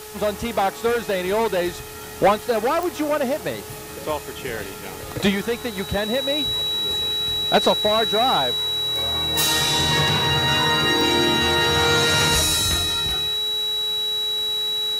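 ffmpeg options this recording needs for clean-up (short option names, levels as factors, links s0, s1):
-af "adeclick=t=4,bandreject=f=427.1:t=h:w=4,bandreject=f=854.2:t=h:w=4,bandreject=f=1281.3:t=h:w=4,bandreject=f=1708.4:t=h:w=4,bandreject=f=3900:w=30,afwtdn=0.011"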